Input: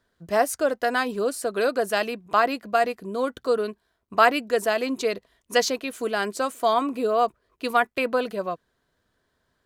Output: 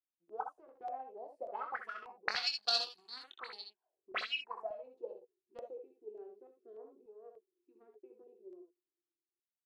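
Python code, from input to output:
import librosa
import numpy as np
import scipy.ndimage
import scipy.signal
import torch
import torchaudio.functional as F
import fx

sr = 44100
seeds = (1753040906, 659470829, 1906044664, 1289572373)

p1 = fx.doppler_pass(x, sr, speed_mps=9, closest_m=3.2, pass_at_s=2.79)
p2 = fx.highpass(p1, sr, hz=170.0, slope=6)
p3 = fx.peak_eq(p2, sr, hz=550.0, db=4.5, octaves=0.57)
p4 = fx.transient(p3, sr, attack_db=1, sustain_db=7)
p5 = fx.small_body(p4, sr, hz=(360.0, 770.0, 2600.0), ring_ms=40, db=15)
p6 = fx.cheby_harmonics(p5, sr, harmonics=(2, 3, 6, 7), levels_db=(-22, -19, -24, -22), full_scale_db=-0.5)
p7 = 10.0 ** (-14.5 / 20.0) * np.tanh(p6 / 10.0 ** (-14.5 / 20.0))
p8 = p6 + (p7 * librosa.db_to_amplitude(-5.0))
p9 = fx.auto_wah(p8, sr, base_hz=330.0, top_hz=4400.0, q=13.0, full_db=-27.0, direction='up')
p10 = p9 + fx.room_early_taps(p9, sr, ms=(23, 65, 79), db=(-8.0, -8.0, -9.5), dry=0)
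p11 = fx.filter_held_notch(p10, sr, hz=3.4, low_hz=370.0, high_hz=7700.0)
y = p11 * librosa.db_to_amplitude(10.5)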